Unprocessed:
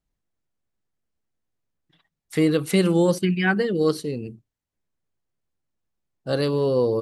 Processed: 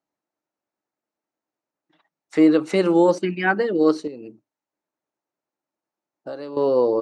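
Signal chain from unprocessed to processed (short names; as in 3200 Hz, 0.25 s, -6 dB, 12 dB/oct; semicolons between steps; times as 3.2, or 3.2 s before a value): speaker cabinet 270–6800 Hz, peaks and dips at 310 Hz +8 dB, 610 Hz +7 dB, 880 Hz +8 dB, 1300 Hz +4 dB, 3300 Hz -7 dB, 4800 Hz -4 dB; 4.07–6.57 compressor 5:1, threshold -32 dBFS, peak gain reduction 15 dB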